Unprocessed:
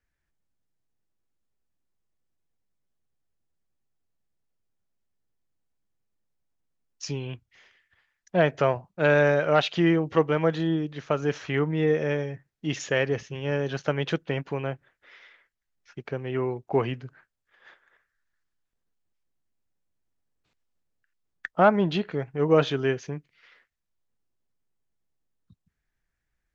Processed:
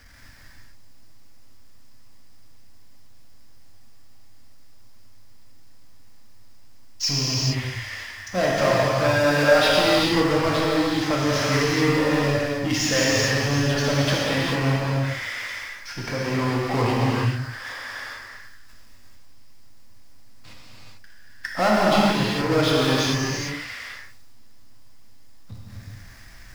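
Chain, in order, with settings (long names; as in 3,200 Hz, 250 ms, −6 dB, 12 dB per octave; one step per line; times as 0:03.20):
power curve on the samples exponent 0.5
thirty-one-band graphic EQ 100 Hz +10 dB, 160 Hz −9 dB, 250 Hz +5 dB, 400 Hz −9 dB, 1,000 Hz +3 dB, 2,000 Hz +3 dB, 5,000 Hz +10 dB
reverb whose tail is shaped and stops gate 470 ms flat, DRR −6 dB
level −8 dB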